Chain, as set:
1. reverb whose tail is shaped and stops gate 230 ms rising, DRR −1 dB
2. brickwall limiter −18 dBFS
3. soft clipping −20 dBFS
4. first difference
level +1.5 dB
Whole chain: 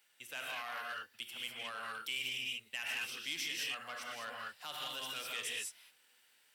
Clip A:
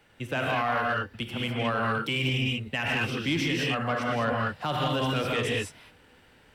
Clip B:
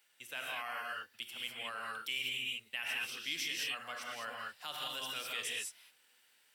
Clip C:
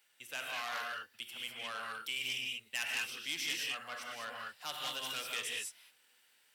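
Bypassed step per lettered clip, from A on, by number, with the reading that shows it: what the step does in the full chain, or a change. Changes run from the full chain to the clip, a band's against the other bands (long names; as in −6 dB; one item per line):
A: 4, 125 Hz band +21.0 dB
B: 3, change in integrated loudness +1.0 LU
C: 2, change in crest factor +3.5 dB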